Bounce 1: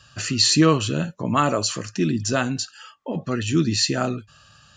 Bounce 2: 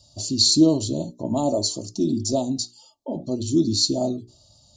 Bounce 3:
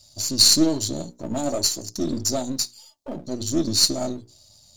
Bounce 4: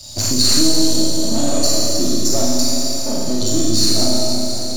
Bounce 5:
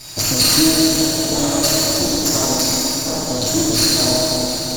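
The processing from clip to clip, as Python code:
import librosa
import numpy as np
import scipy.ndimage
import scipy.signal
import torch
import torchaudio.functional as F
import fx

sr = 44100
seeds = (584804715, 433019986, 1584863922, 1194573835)

y1 = scipy.signal.sosfilt(scipy.signal.ellip(3, 1.0, 60, [790.0, 4000.0], 'bandstop', fs=sr, output='sos'), x)
y1 = fx.hum_notches(y1, sr, base_hz=60, count=7)
y1 = y1 + 0.51 * np.pad(y1, (int(3.2 * sr / 1000.0), 0))[:len(y1)]
y2 = np.where(y1 < 0.0, 10.0 ** (-7.0 / 20.0) * y1, y1)
y2 = fx.high_shelf(y2, sr, hz=3300.0, db=10.0)
y2 = y2 * 10.0 ** (-1.0 / 20.0)
y3 = fx.rev_schroeder(y2, sr, rt60_s=2.1, comb_ms=28, drr_db=-5.5)
y3 = fx.leveller(y3, sr, passes=1)
y3 = fx.band_squash(y3, sr, depth_pct=70)
y3 = y3 * 10.0 ** (-4.0 / 20.0)
y4 = fx.lower_of_two(y3, sr, delay_ms=6.5)
y4 = fx.echo_split(y4, sr, split_hz=460.0, low_ms=343, high_ms=83, feedback_pct=52, wet_db=-8.0)
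y4 = y4 * 10.0 ** (2.0 / 20.0)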